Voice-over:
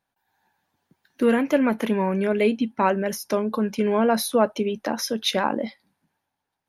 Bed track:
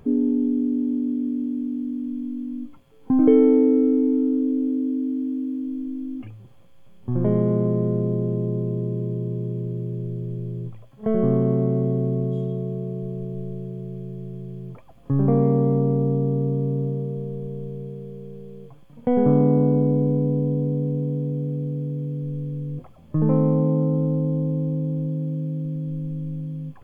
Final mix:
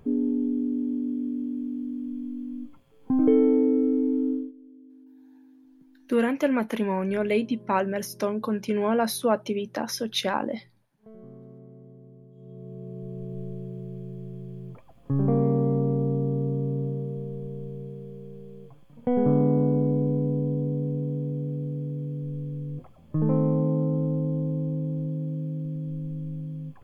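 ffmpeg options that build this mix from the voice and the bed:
-filter_complex "[0:a]adelay=4900,volume=0.668[s0];[1:a]volume=7.94,afade=t=out:st=4.31:d=0.21:silence=0.0794328,afade=t=in:st=12.35:d=1.06:silence=0.0749894[s1];[s0][s1]amix=inputs=2:normalize=0"

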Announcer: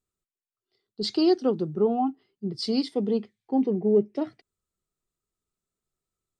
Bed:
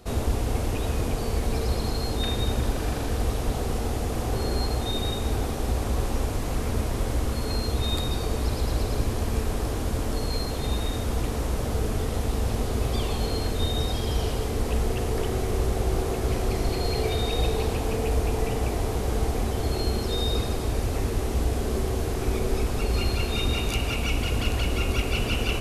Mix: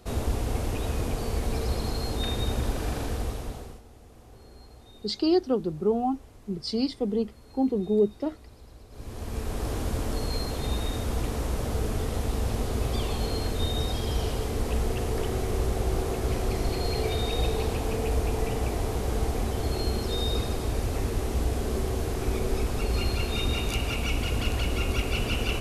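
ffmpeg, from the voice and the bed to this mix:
-filter_complex "[0:a]adelay=4050,volume=0.841[s0];[1:a]volume=8.91,afade=t=out:st=3.02:d=0.8:silence=0.0891251,afade=t=in:st=8.9:d=0.83:silence=0.0841395[s1];[s0][s1]amix=inputs=2:normalize=0"

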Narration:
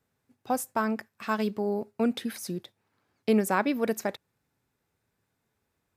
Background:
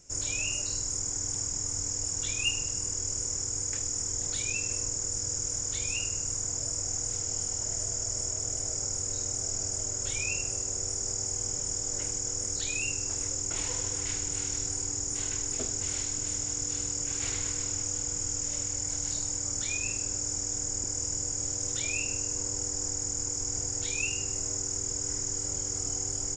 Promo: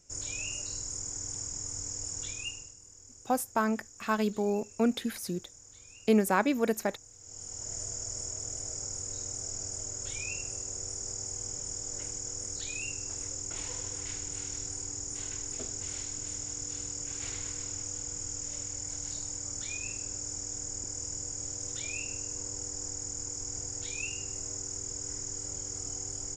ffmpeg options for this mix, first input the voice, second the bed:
-filter_complex "[0:a]adelay=2800,volume=0.944[s0];[1:a]volume=3.16,afade=t=out:st=2.21:d=0.55:silence=0.16788,afade=t=in:st=7.19:d=0.57:silence=0.16788[s1];[s0][s1]amix=inputs=2:normalize=0"

